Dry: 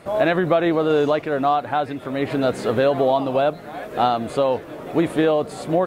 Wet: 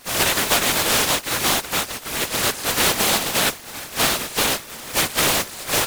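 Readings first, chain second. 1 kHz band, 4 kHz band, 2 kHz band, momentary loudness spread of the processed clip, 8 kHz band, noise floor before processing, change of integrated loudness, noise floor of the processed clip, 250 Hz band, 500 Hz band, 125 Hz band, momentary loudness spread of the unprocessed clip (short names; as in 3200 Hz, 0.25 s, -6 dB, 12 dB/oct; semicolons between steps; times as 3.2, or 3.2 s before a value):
-3.0 dB, +14.5 dB, +7.5 dB, 7 LU, n/a, -37 dBFS, +1.5 dB, -38 dBFS, -7.5 dB, -9.0 dB, -3.5 dB, 7 LU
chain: spectral contrast lowered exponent 0.17; whisperiser; Doppler distortion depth 0.33 ms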